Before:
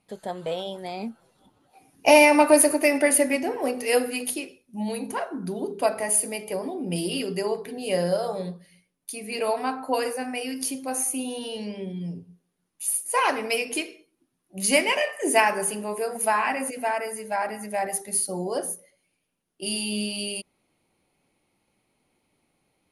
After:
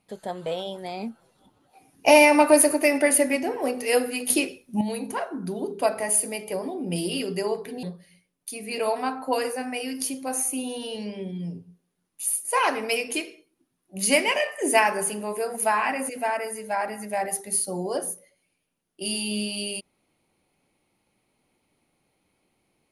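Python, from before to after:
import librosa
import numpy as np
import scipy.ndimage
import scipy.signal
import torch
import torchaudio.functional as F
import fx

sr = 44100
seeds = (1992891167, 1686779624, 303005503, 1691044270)

y = fx.edit(x, sr, fx.clip_gain(start_s=4.3, length_s=0.51, db=9.0),
    fx.cut(start_s=7.83, length_s=0.61), tone=tone)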